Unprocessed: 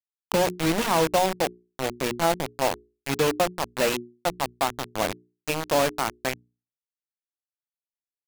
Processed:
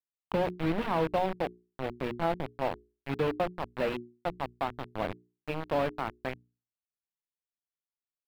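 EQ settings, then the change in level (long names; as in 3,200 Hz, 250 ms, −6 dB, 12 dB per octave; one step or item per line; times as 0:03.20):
high-frequency loss of the air 460 metres
low-shelf EQ 140 Hz +4.5 dB
high-shelf EQ 5,500 Hz +10 dB
−5.5 dB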